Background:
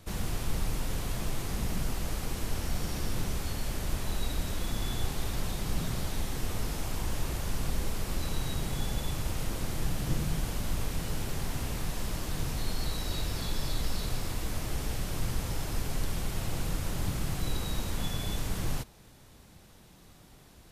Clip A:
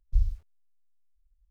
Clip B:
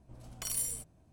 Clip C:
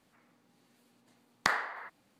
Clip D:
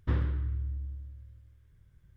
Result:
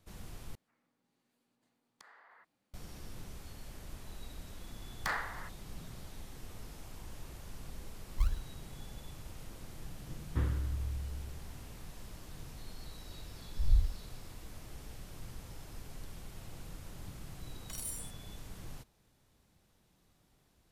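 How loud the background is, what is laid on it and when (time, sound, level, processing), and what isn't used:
background -15 dB
0.55 replace with C -12.5 dB + compressor 5:1, threshold -44 dBFS
3.6 add C -3 dB + hard clip -25 dBFS
8.05 add A -6.5 dB + decimation with a swept rate 37×, swing 60% 2.7 Hz
10.28 add D -4 dB
13.57 add A -3.5 dB + spectral swells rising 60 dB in 0.72 s
17.28 add B -7.5 dB

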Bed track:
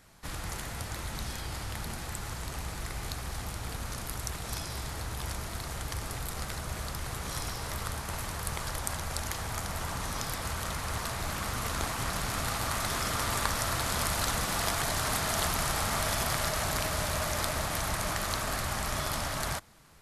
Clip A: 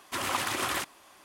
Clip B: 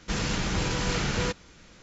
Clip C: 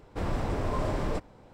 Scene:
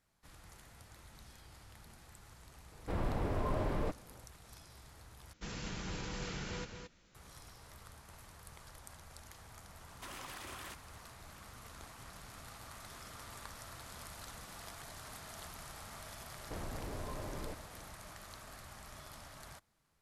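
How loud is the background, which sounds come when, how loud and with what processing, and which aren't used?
bed track -19.5 dB
2.72 add C -5 dB + bell 7100 Hz -8.5 dB 1.2 oct
5.33 replace with B -15 dB + echo 0.221 s -7 dB
9.9 add A -9.5 dB + compressor, threshold -35 dBFS
16.35 add C -5 dB + compressor, threshold -34 dBFS

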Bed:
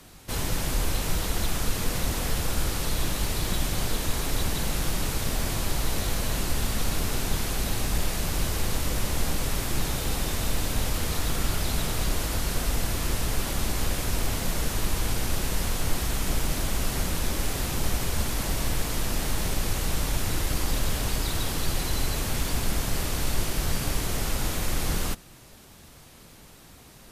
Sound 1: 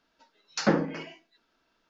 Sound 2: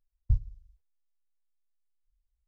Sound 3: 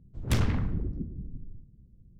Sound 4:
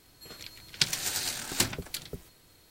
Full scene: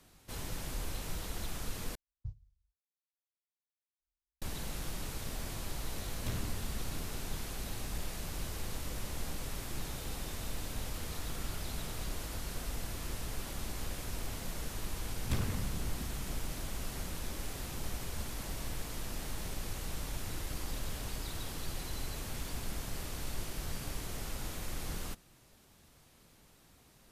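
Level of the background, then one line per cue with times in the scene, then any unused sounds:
bed -12.5 dB
1.95 replace with 2 -11 dB + HPF 110 Hz 6 dB/oct
5.95 add 3 -14 dB
15 add 3 -9 dB
not used: 1, 4

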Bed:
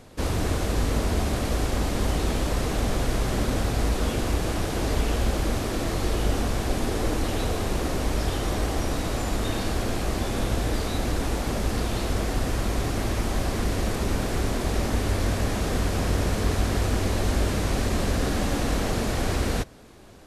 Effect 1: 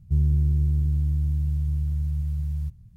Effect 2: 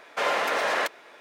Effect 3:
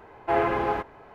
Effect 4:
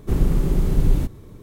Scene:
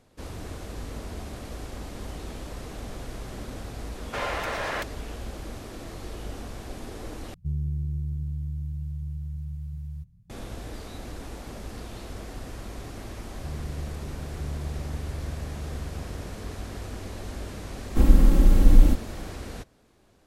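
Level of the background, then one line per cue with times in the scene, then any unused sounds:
bed -12.5 dB
3.96 add 2 -5.5 dB
7.34 replace with 1 -9 dB + bell 170 Hz +10 dB 0.25 oct
13.33 add 1 -14.5 dB + echo 0.952 s -5 dB
17.88 add 4 -1.5 dB + comb 3.7 ms, depth 98%
not used: 3

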